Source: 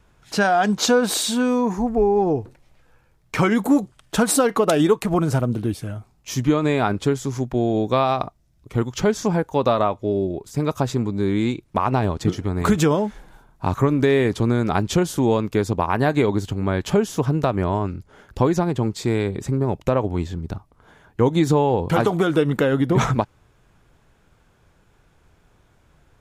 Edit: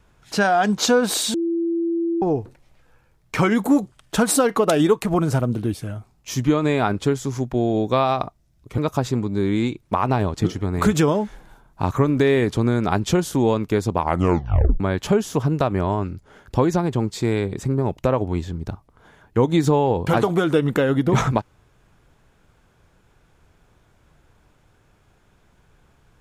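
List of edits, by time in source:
0:01.34–0:02.22: beep over 336 Hz −19 dBFS
0:08.78–0:10.61: remove
0:15.81: tape stop 0.82 s

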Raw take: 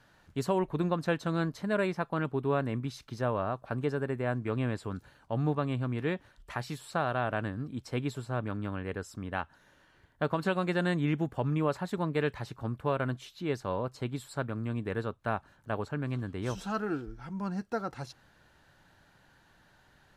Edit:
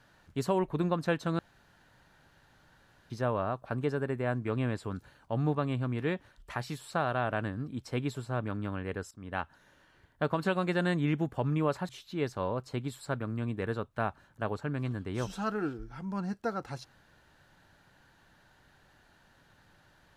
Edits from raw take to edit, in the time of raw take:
0:01.39–0:03.10: fill with room tone
0:09.11–0:09.39: fade in, from −19 dB
0:11.89–0:13.17: remove

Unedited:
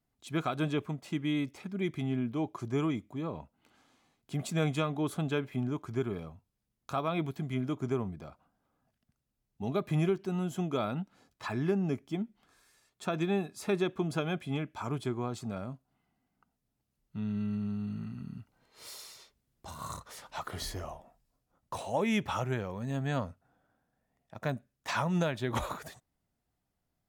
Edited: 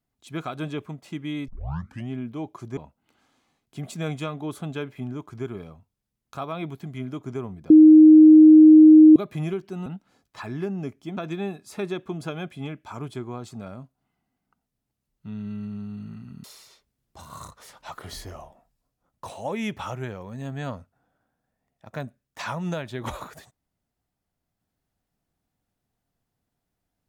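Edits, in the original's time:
0:01.48: tape start 0.62 s
0:02.77–0:03.33: remove
0:08.26–0:09.72: beep over 311 Hz −6.5 dBFS
0:10.42–0:10.92: remove
0:12.23–0:13.07: remove
0:18.34–0:18.93: remove

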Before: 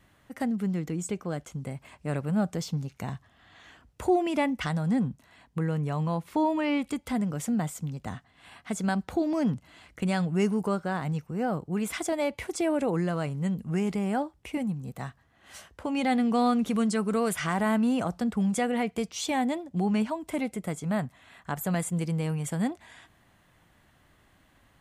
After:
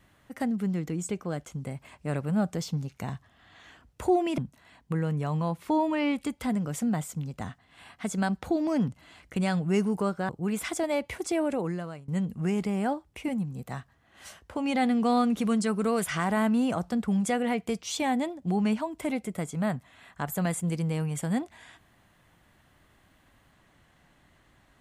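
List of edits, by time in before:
0:04.38–0:05.04: remove
0:10.95–0:11.58: remove
0:12.43–0:13.37: fade out equal-power, to −21.5 dB

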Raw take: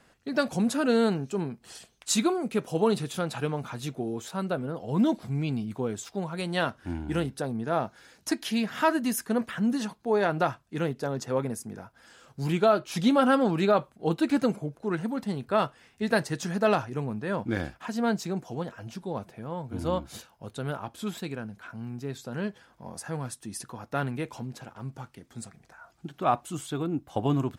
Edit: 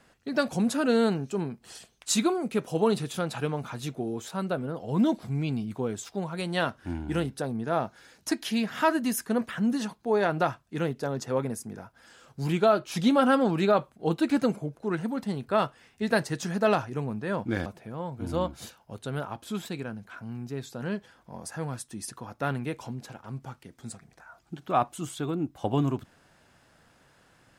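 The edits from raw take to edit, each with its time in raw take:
0:17.66–0:19.18: remove

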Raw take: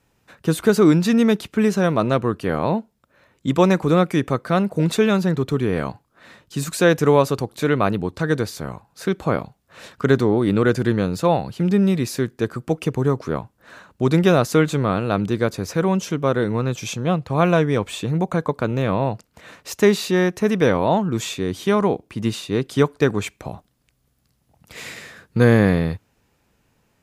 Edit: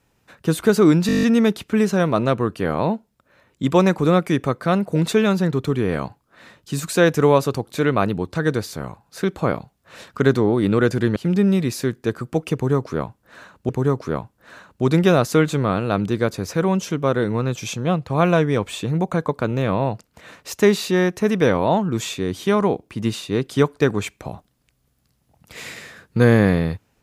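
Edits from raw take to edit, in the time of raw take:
0:01.07: stutter 0.02 s, 9 plays
0:11.00–0:11.51: remove
0:12.89–0:14.04: repeat, 2 plays

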